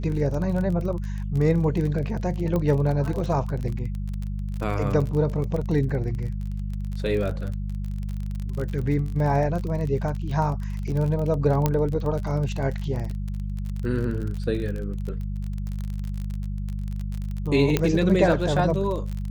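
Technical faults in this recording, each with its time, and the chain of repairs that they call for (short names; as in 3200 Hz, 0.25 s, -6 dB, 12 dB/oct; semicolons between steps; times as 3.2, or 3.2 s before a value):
crackle 34/s -29 dBFS
hum 50 Hz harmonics 4 -29 dBFS
2.56 pop -15 dBFS
11.66 pop -8 dBFS
17.77 pop -7 dBFS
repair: de-click; de-hum 50 Hz, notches 4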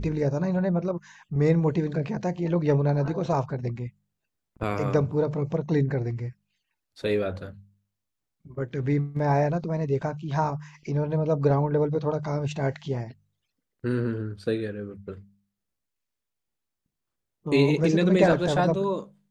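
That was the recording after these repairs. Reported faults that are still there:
11.66 pop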